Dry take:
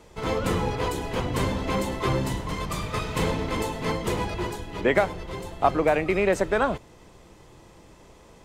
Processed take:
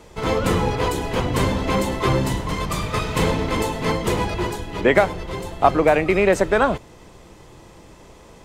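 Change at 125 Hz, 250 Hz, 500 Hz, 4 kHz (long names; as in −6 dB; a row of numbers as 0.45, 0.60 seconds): +5.5, +5.5, +5.5, +5.5 decibels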